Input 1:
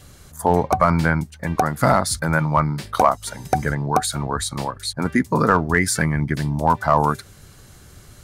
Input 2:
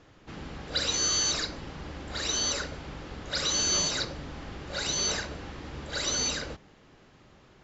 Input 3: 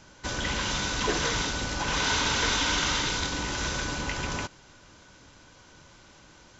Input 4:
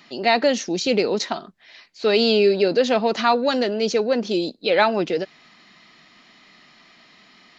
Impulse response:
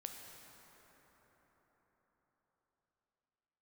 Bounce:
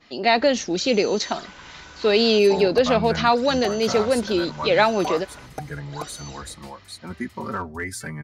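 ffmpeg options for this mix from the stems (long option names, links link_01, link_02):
-filter_complex "[0:a]asplit=2[link_01][link_02];[link_02]adelay=4.5,afreqshift=0.31[link_03];[link_01][link_03]amix=inputs=2:normalize=1,adelay=2050,volume=-9dB[link_04];[1:a]acompressor=threshold=-41dB:ratio=1.5,volume=-7.5dB[link_05];[2:a]highpass=790,highshelf=frequency=2700:gain=-11,adelay=1000,volume=-8.5dB,asplit=3[link_06][link_07][link_08];[link_06]atrim=end=2.39,asetpts=PTS-STARTPTS,afade=type=out:start_time=2.386:duration=0.004:curve=hsin[link_09];[link_07]atrim=start=2.39:end=3.82,asetpts=PTS-STARTPTS,volume=0[link_10];[link_08]atrim=start=3.82,asetpts=PTS-STARTPTS,afade=type=in:duration=0.004:curve=hsin[link_11];[link_09][link_10][link_11]concat=n=3:v=0:a=1[link_12];[3:a]agate=range=-33dB:threshold=-48dB:ratio=3:detection=peak,volume=0dB[link_13];[link_04][link_05][link_12][link_13]amix=inputs=4:normalize=0"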